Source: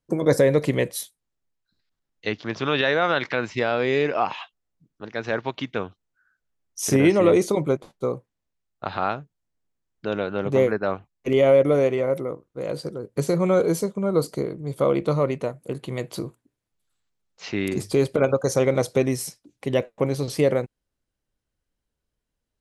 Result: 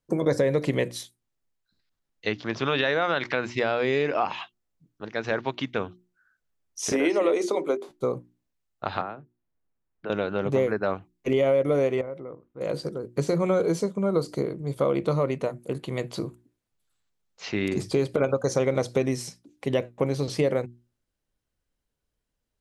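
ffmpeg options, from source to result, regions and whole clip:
-filter_complex "[0:a]asettb=1/sr,asplit=3[s0][s1][s2];[s0]atrim=end=6.924[s3];[s1]atrim=start=6.92:end=7.89,asetpts=PTS-STARTPTS,afade=t=in:d=0.004:c=qsin,afade=t=out:st=0.966:d=0.004:c=qsin,highpass=f=290:w=0.5412,highpass=f=290:w=1.3066,bandreject=f=50:t=h:w=6,bandreject=f=100:t=h:w=6,bandreject=f=150:t=h:w=6,bandreject=f=200:t=h:w=6,bandreject=f=250:t=h:w=6,bandreject=f=300:t=h:w=6,bandreject=f=350:t=h:w=6,bandreject=f=400:t=h:w=6[s4];[s2]atrim=start=7.886[s5];[s3][s4]acrossfade=d=0.004:c1=hsin:c2=qsin[s6];[s6][s5]acrossfade=d=0.004:c1=qsin:c2=hsin,asettb=1/sr,asplit=3[s7][s8][s9];[s7]atrim=end=9.014[s10];[s8]atrim=start=9.01:end=10.1,asetpts=PTS-STARTPTS,afade=t=in:d=0.004:c=qsin,afade=t=out:st=1.086:d=0.004:c=qsin,lowpass=2100,acrossover=split=190|450[s11][s12][s13];[s11]acompressor=threshold=0.00224:ratio=4[s14];[s12]acompressor=threshold=0.00708:ratio=4[s15];[s13]acompressor=threshold=0.02:ratio=4[s16];[s14][s15][s16]amix=inputs=3:normalize=0[s17];[s9]atrim=start=10.096[s18];[s10][s17]acrossfade=d=0.004:c1=hsin:c2=qsin[s19];[s19][s18]acrossfade=d=0.004:c1=qsin:c2=hsin,asettb=1/sr,asplit=3[s20][s21][s22];[s20]atrim=end=12.014[s23];[s21]atrim=start=12.01:end=12.61,asetpts=PTS-STARTPTS,afade=t=in:d=0.004:c=qsin,afade=t=out:st=0.596:d=0.004:c=qsin,acompressor=threshold=0.00794:ratio=2:attack=3.2:release=140:knee=1:detection=peak,lowpass=2700[s24];[s22]atrim=start=12.606[s25];[s23][s24]acrossfade=d=0.004:c1=hsin:c2=qsin[s26];[s26][s25]acrossfade=d=0.004:c1=qsin:c2=hsin,acrossover=split=7800[s27][s28];[s28]acompressor=threshold=0.00178:ratio=4:attack=1:release=60[s29];[s27][s29]amix=inputs=2:normalize=0,bandreject=f=60:t=h:w=6,bandreject=f=120:t=h:w=6,bandreject=f=180:t=h:w=6,bandreject=f=240:t=h:w=6,bandreject=f=300:t=h:w=6,bandreject=f=360:t=h:w=6,acompressor=threshold=0.1:ratio=3"

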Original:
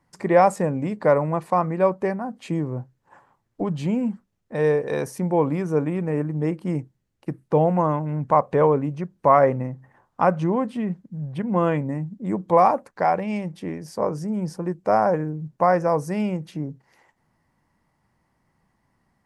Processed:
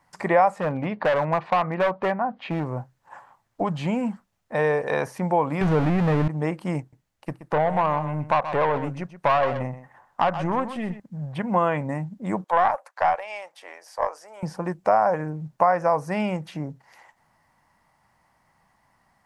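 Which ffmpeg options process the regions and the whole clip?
-filter_complex "[0:a]asettb=1/sr,asplit=3[s0][s1][s2];[s0]atrim=end=0.604[s3];[s1]atrim=start=0.6:end=2.65,asetpts=PTS-STARTPTS,afade=t=in:d=0.004:c=qsin,afade=t=out:st=2.046:d=0.004:c=qsin,lowpass=f=3800:w=0.5412,lowpass=f=3800:w=1.3066,asoftclip=type=hard:threshold=0.112[s4];[s2]atrim=start=2.646[s5];[s3][s4]acrossfade=d=0.004:c1=hsin:c2=qsin[s6];[s6][s5]acrossfade=d=0.004:c1=qsin:c2=hsin,asettb=1/sr,asplit=3[s7][s8][s9];[s7]atrim=end=5.614[s10];[s8]atrim=start=5.61:end=6.28,asetpts=PTS-STARTPTS,afade=t=in:d=0.004:c=qsin,afade=t=out:st=0.666:d=0.004:c=qsin,aeval=exprs='val(0)+0.5*0.0596*sgn(val(0))':c=same,aemphasis=mode=reproduction:type=bsi[s11];[s9]atrim=start=6.276[s12];[s10][s11]acrossfade=d=0.004:c1=hsin:c2=qsin[s13];[s13][s12]acrossfade=d=0.004:c1=qsin:c2=hsin,asettb=1/sr,asplit=3[s14][s15][s16];[s14]atrim=end=6.804[s17];[s15]atrim=start=6.8:end=11,asetpts=PTS-STARTPTS,afade=t=in:d=0.004:c=qsin,afade=t=out:st=4.196:d=0.004:c=qsin,aeval=exprs='(tanh(7.08*val(0)+0.5)-tanh(0.5))/7.08':c=same,aecho=1:1:126:0.224,atrim=end_sample=185220[s18];[s16]atrim=start=10.996[s19];[s17][s18]acrossfade=d=0.004:c1=hsin:c2=qsin[s20];[s20][s19]acrossfade=d=0.004:c1=qsin:c2=hsin,asettb=1/sr,asplit=3[s21][s22][s23];[s21]atrim=end=12.444[s24];[s22]atrim=start=12.44:end=14.43,asetpts=PTS-STARTPTS,afade=t=in:d=0.004:c=qsin,afade=t=out:st=1.986:d=0.004:c=qsin,highpass=f=540:w=0.5412,highpass=f=540:w=1.3066,aeval=exprs='(tanh(3.16*val(0)+0.75)-tanh(0.75))/3.16':c=same[s25];[s23]atrim=start=14.426[s26];[s24][s25]acrossfade=d=0.004:c1=hsin:c2=qsin[s27];[s27][s26]acrossfade=d=0.004:c1=qsin:c2=hsin,acrossover=split=3500[s28][s29];[s29]acompressor=threshold=0.002:ratio=4:attack=1:release=60[s30];[s28][s30]amix=inputs=2:normalize=0,lowshelf=f=530:t=q:w=1.5:g=-7.5,acompressor=threshold=0.0562:ratio=2.5,volume=2.11"

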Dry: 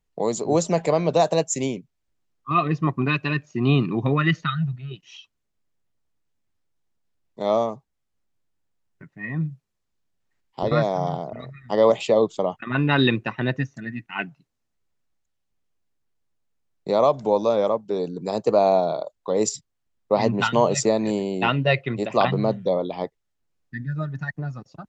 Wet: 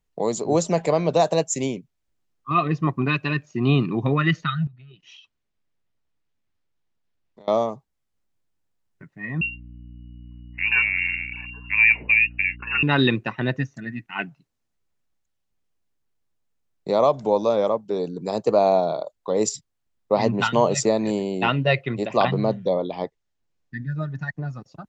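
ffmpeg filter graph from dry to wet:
-filter_complex "[0:a]asettb=1/sr,asplit=3[s0][s1][s2];[s0]atrim=end=4.674[s3];[s1]atrim=start=4.67:end=7.48,asetpts=PTS-STARTPTS,afade=t=in:d=0.004:c=qsin,afade=t=out:st=2.806:d=0.004:c=qsin,lowpass=3100,aemphasis=mode=production:type=75fm,acompressor=threshold=0.00708:ratio=16:attack=3.2:release=140:knee=1:detection=peak[s4];[s2]atrim=start=7.476[s5];[s3][s4]acrossfade=d=0.004:c1=hsin:c2=qsin[s6];[s6][s5]acrossfade=d=0.004:c1=qsin:c2=hsin,asettb=1/sr,asplit=3[s7][s8][s9];[s7]atrim=end=9.414[s10];[s8]atrim=start=9.41:end=12.83,asetpts=PTS-STARTPTS,afade=t=in:d=0.004:c=qsin,afade=t=out:st=3.416:d=0.004:c=qsin,equalizer=f=2200:w=1.8:g=-3,lowpass=f=2500:t=q:w=0.5098,lowpass=f=2500:t=q:w=0.6013,lowpass=f=2500:t=q:w=0.9,lowpass=f=2500:t=q:w=2.563,afreqshift=-2900,aeval=exprs='val(0)+0.01*(sin(2*PI*60*n/s)+sin(2*PI*2*60*n/s)/2+sin(2*PI*3*60*n/s)/3+sin(2*PI*4*60*n/s)/4+sin(2*PI*5*60*n/s)/5)':c=same[s11];[s9]atrim=start=12.826[s12];[s10][s11]acrossfade=d=0.004:c1=hsin:c2=qsin[s13];[s13][s12]acrossfade=d=0.004:c1=qsin:c2=hsin,asettb=1/sr,asplit=3[s14][s15][s16];[s14]atrim=end=22.004[s17];[s15]atrim=start=22:end=24.46,asetpts=PTS-STARTPTS,afade=t=in:d=0.004:c=qsin,afade=t=out:st=2.456:d=0.004:c=qsin,lowpass=f=7700:w=0.5412,lowpass=f=7700:w=1.3066,bandreject=f=1300:w=19[s18];[s16]atrim=start=24.456[s19];[s17][s18]acrossfade=d=0.004:c1=hsin:c2=qsin[s20];[s20][s19]acrossfade=d=0.004:c1=qsin:c2=hsin"

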